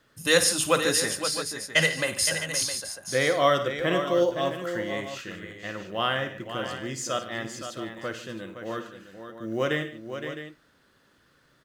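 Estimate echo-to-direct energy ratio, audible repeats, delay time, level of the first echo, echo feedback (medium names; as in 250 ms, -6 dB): -5.5 dB, 5, 54 ms, -11.5 dB, no regular repeats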